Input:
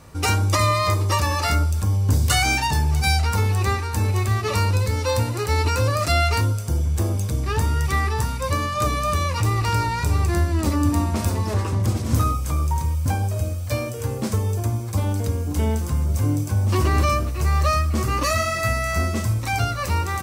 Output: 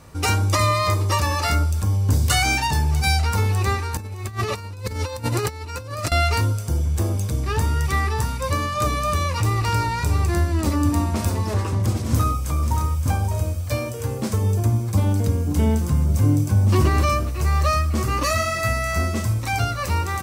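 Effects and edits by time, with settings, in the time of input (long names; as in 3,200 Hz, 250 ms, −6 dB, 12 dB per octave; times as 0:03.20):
0:03.97–0:06.12: compressor whose output falls as the input rises −26 dBFS, ratio −0.5
0:12.05–0:13.04: delay throw 570 ms, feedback 15%, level −8 dB
0:14.41–0:16.89: parametric band 170 Hz +6.5 dB 1.6 octaves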